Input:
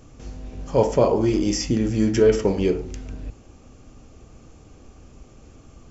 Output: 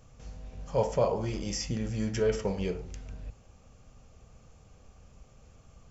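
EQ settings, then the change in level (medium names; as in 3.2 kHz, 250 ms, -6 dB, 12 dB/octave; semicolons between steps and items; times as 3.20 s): FFT filter 190 Hz 0 dB, 310 Hz -13 dB, 500 Hz 0 dB; -7.5 dB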